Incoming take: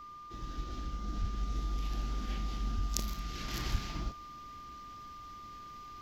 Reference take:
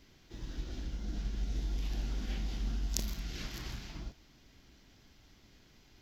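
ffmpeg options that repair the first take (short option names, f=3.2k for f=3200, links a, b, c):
-filter_complex "[0:a]bandreject=f=1.2k:w=30,asplit=3[a][b][c];[a]afade=t=out:st=1.2:d=0.02[d];[b]highpass=f=140:w=0.5412,highpass=f=140:w=1.3066,afade=t=in:st=1.2:d=0.02,afade=t=out:st=1.32:d=0.02[e];[c]afade=t=in:st=1.32:d=0.02[f];[d][e][f]amix=inputs=3:normalize=0,asplit=3[g][h][i];[g]afade=t=out:st=2.75:d=0.02[j];[h]highpass=f=140:w=0.5412,highpass=f=140:w=1.3066,afade=t=in:st=2.75:d=0.02,afade=t=out:st=2.87:d=0.02[k];[i]afade=t=in:st=2.87:d=0.02[l];[j][k][l]amix=inputs=3:normalize=0,asplit=3[m][n][o];[m]afade=t=out:st=3.71:d=0.02[p];[n]highpass=f=140:w=0.5412,highpass=f=140:w=1.3066,afade=t=in:st=3.71:d=0.02,afade=t=out:st=3.83:d=0.02[q];[o]afade=t=in:st=3.83:d=0.02[r];[p][q][r]amix=inputs=3:normalize=0,asetnsamples=n=441:p=0,asendcmd='3.48 volume volume -5.5dB',volume=0dB"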